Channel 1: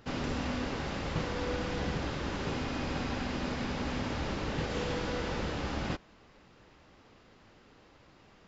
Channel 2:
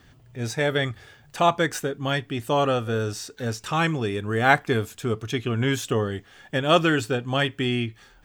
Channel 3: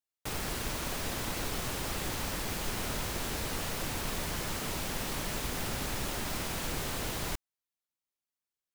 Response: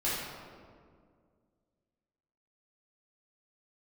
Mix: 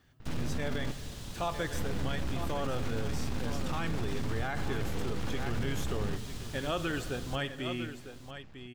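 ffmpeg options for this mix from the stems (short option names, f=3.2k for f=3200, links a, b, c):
-filter_complex "[0:a]aeval=exprs='max(val(0),0)':c=same,adelay=200,volume=1dB,asplit=3[a][b][c];[a]atrim=end=0.92,asetpts=PTS-STARTPTS,afade=t=out:st=0.916:d=0.004:c=hsin[d];[b]atrim=start=0.92:end=1.74,asetpts=PTS-STARTPTS,volume=0[e];[c]atrim=start=1.74,asetpts=PTS-STARTPTS,afade=t=in:d=0.004:c=hsin[f];[d][e][f]concat=n=3:v=0:a=1[g];[1:a]equalizer=f=12k:w=5:g=8,volume=-12dB,asplit=3[h][i][j];[i]volume=-21dB[k];[j]volume=-10.5dB[l];[2:a]acrossover=split=7500[m][n];[n]acompressor=threshold=-57dB:ratio=4:attack=1:release=60[o];[m][o]amix=inputs=2:normalize=0,aexciter=amount=3:drive=4.8:freq=3k,volume=-15dB,asplit=2[p][q];[q]volume=-12dB[r];[g][p]amix=inputs=2:normalize=0,bass=f=250:g=13,treble=f=4k:g=-2,alimiter=limit=-24dB:level=0:latency=1:release=14,volume=0dB[s];[3:a]atrim=start_sample=2205[t];[k][t]afir=irnorm=-1:irlink=0[u];[l][r]amix=inputs=2:normalize=0,aecho=0:1:952:1[v];[h][s][u][v]amix=inputs=4:normalize=0,alimiter=limit=-23dB:level=0:latency=1:release=35"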